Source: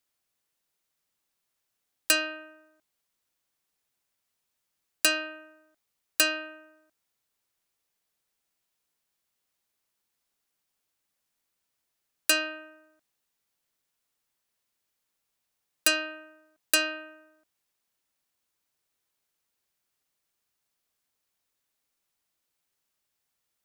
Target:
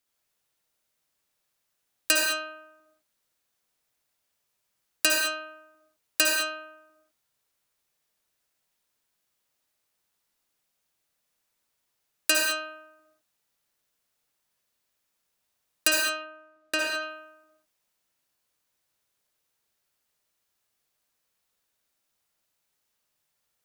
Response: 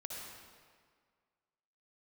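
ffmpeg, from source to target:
-filter_complex "[0:a]asplit=3[a][b][c];[a]afade=t=out:st=16.02:d=0.02[d];[b]aemphasis=mode=reproduction:type=75kf,afade=t=in:st=16.02:d=0.02,afade=t=out:st=16.8:d=0.02[e];[c]afade=t=in:st=16.8:d=0.02[f];[d][e][f]amix=inputs=3:normalize=0[g];[1:a]atrim=start_sample=2205,afade=t=out:st=0.27:d=0.01,atrim=end_sample=12348[h];[g][h]afir=irnorm=-1:irlink=0,volume=5.5dB"

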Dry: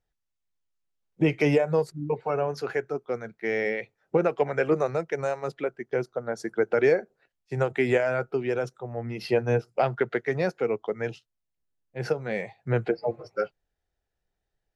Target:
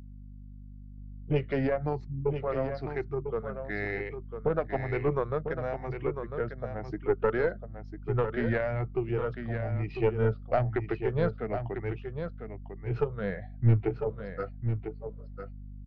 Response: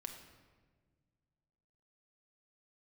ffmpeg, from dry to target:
-filter_complex "[0:a]afftfilt=real='re*pow(10,11/40*sin(2*PI*(0.72*log(max(b,1)*sr/1024/100)/log(2)-(1.1)*(pts-256)/sr)))':imag='im*pow(10,11/40*sin(2*PI*(0.72*log(max(b,1)*sr/1024/100)/log(2)-(1.1)*(pts-256)/sr)))':win_size=1024:overlap=0.75,asetrate=41013,aresample=44100,lowpass=f=4.2k:w=0.5412,lowpass=f=4.2k:w=1.3066,asubboost=boost=3.5:cutoff=140,aeval=exprs='val(0)+0.0112*(sin(2*PI*50*n/s)+sin(2*PI*2*50*n/s)/2+sin(2*PI*3*50*n/s)/3+sin(2*PI*4*50*n/s)/4+sin(2*PI*5*50*n/s)/5)':c=same,aeval=exprs='0.376*(cos(1*acos(clip(val(0)/0.376,-1,1)))-cos(1*PI/2))+0.106*(cos(2*acos(clip(val(0)/0.376,-1,1)))-cos(2*PI/2))+0.00299*(cos(7*acos(clip(val(0)/0.376,-1,1)))-cos(7*PI/2))':c=same,highshelf=f=2.5k:g=-8,asplit=2[a][b];[b]aecho=0:1:999:0.398[c];[a][c]amix=inputs=2:normalize=0,volume=-5dB"

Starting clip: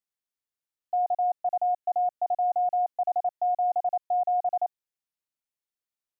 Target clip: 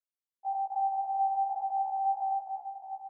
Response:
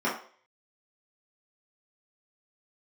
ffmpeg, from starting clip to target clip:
-filter_complex "[0:a]asetrate=24046,aresample=44100,atempo=1.83401,bandreject=f=940:w=16,asetrate=88200,aresample=44100,asplit=2[a][b];[b]aecho=0:1:270|621|1077|1670|2442:0.631|0.398|0.251|0.158|0.1[c];[a][c]amix=inputs=2:normalize=0,afftfilt=real='re*1.73*eq(mod(b,3),0)':imag='im*1.73*eq(mod(b,3),0)':win_size=2048:overlap=0.75,volume=-5.5dB"

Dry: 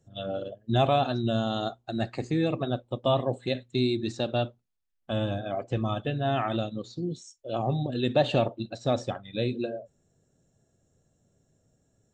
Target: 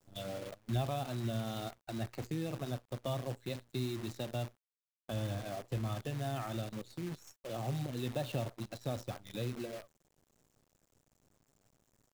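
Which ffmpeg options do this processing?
-filter_complex "[0:a]acrossover=split=120[a][b];[b]acompressor=threshold=-42dB:ratio=2[c];[a][c]amix=inputs=2:normalize=0,acrusher=bits=8:dc=4:mix=0:aa=0.000001,volume=-3dB"

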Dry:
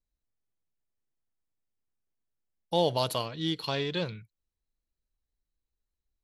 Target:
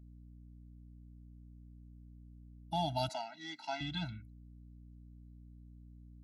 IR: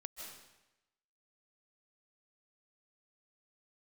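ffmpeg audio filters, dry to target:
-filter_complex "[0:a]aeval=exprs='val(0)+0.00355*(sin(2*PI*60*n/s)+sin(2*PI*2*60*n/s)/2+sin(2*PI*3*60*n/s)/3+sin(2*PI*4*60*n/s)/4+sin(2*PI*5*60*n/s)/5)':c=same,asettb=1/sr,asplit=3[a][b][c];[a]atrim=end=3.094[d];[b]atrim=start=3.09:end=3.81,asetpts=PTS-STARTPTS,afade=t=in:d=0.004:c=qsin,afade=t=out:st=0.716:d=0.004:c=qsin,highpass=f=300:w=0.5412,highpass=f=300:w=1.3066,equalizer=f=320:t=q:w=4:g=-7,equalizer=f=540:t=q:w=4:g=7,equalizer=f=890:t=q:w=4:g=5,equalizer=f=2k:t=q:w=4:g=5,equalizer=f=3.2k:t=q:w=4:g=-10,equalizer=f=6.1k:t=q:w=4:g=5,lowpass=f=7.5k:w=0.5412,lowpass=f=7.5k:w=1.3066[e];[c]atrim=start=3.806[f];[d][e]acrossfade=d=0.004:c1=hsin:c2=qsin[g];[g][f]acrossfade=d=0.004:c1=qsin:c2=hsin,afftfilt=real='re*eq(mod(floor(b*sr/1024/320),2),0)':imag='im*eq(mod(floor(b*sr/1024/320),2),0)':win_size=1024:overlap=0.75,volume=-4dB"

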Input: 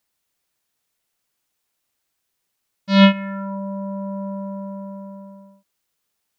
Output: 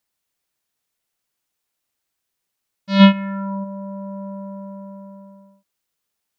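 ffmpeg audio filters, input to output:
-filter_complex "[0:a]asplit=3[a][b][c];[a]afade=t=out:st=2.99:d=0.02[d];[b]equalizer=f=125:t=o:w=1:g=6,equalizer=f=250:t=o:w=1:g=5,equalizer=f=1k:t=o:w=1:g=5,equalizer=f=4k:t=o:w=1:g=4,afade=t=in:st=2.99:d=0.02,afade=t=out:st=3.63:d=0.02[e];[c]afade=t=in:st=3.63:d=0.02[f];[d][e][f]amix=inputs=3:normalize=0,volume=-3dB"

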